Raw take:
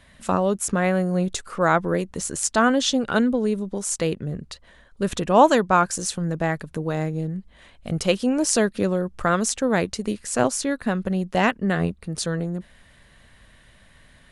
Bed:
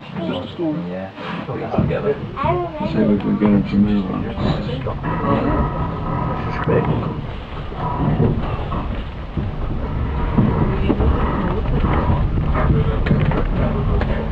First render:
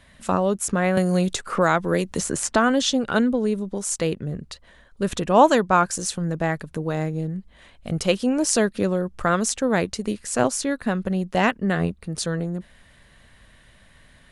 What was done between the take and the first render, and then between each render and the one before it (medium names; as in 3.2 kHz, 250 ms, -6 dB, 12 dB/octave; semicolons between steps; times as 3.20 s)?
0.97–2.82 s: three bands compressed up and down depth 70%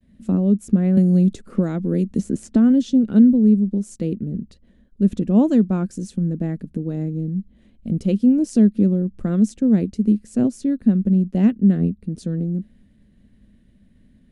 expander -50 dBFS; FFT filter 150 Hz 0 dB, 210 Hz +12 dB, 990 Hz -21 dB, 2.4 kHz -16 dB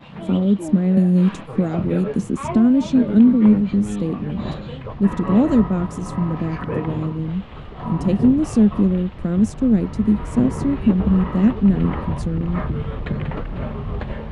add bed -8.5 dB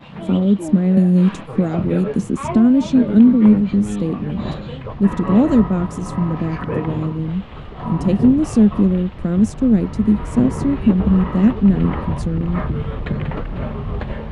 trim +2 dB